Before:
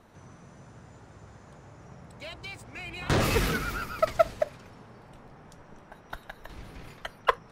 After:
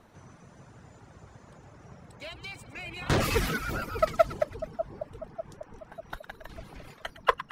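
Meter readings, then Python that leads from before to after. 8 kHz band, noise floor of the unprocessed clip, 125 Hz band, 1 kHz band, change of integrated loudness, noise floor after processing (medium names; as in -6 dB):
-1.0 dB, -53 dBFS, -1.0 dB, 0.0 dB, -1.5 dB, -56 dBFS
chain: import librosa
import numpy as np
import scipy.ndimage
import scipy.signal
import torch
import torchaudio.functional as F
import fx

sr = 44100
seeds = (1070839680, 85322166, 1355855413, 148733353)

y = fx.echo_split(x, sr, split_hz=920.0, low_ms=595, high_ms=109, feedback_pct=52, wet_db=-10.0)
y = fx.dereverb_blind(y, sr, rt60_s=0.68)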